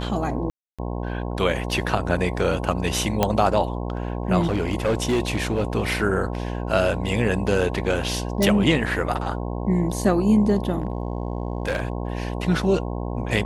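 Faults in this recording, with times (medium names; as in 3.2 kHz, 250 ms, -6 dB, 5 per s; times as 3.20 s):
buzz 60 Hz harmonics 18 -28 dBFS
0.50–0.79 s: dropout 286 ms
3.23 s: pop -5 dBFS
4.40–5.64 s: clipped -16.5 dBFS
8.43 s: pop
10.78–11.93 s: clipped -19 dBFS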